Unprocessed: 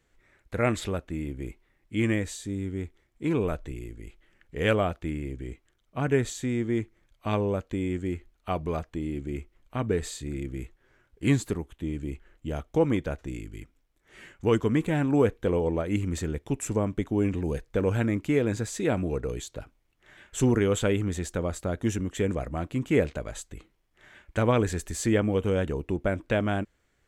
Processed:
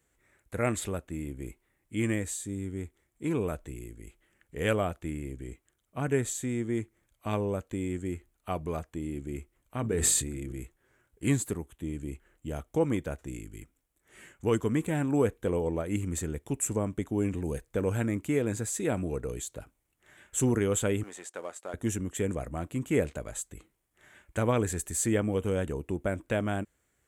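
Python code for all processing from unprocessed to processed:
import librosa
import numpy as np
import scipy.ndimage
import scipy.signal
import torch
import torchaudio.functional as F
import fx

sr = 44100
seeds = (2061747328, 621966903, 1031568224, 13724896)

y = fx.chain(x, sr, fx.hum_notches(base_hz=50, count=8),
    fx.sustainer(db_per_s=24.0), at=(9.8, 10.6))
y = fx.chain(y, sr, fx.law_mismatch(coded='A'),
    fx.highpass(hz=550.0, slope=12),
    fx.air_absorb(metres=58.0), at=(21.03, 21.74))
y = scipy.signal.sosfilt(scipy.signal.butter(2, 44.0, 'highpass', fs=sr, output='sos'), y)
y = fx.high_shelf_res(y, sr, hz=6500.0, db=8.5, q=1.5)
y = y * 10.0 ** (-3.5 / 20.0)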